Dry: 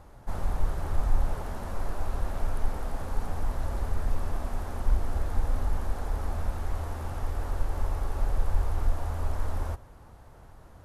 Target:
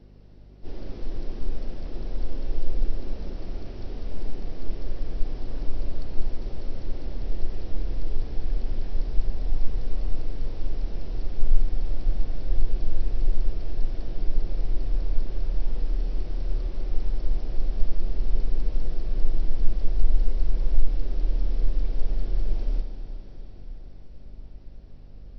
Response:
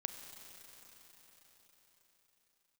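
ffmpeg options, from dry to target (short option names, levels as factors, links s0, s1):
-filter_complex "[0:a]asubboost=boost=3:cutoff=240,asetrate=18846,aresample=44100[s0];[1:a]atrim=start_sample=2205[s1];[s0][s1]afir=irnorm=-1:irlink=0,aeval=exprs='val(0)+0.00316*(sin(2*PI*50*n/s)+sin(2*PI*2*50*n/s)/2+sin(2*PI*3*50*n/s)/3+sin(2*PI*4*50*n/s)/4+sin(2*PI*5*50*n/s)/5)':c=same"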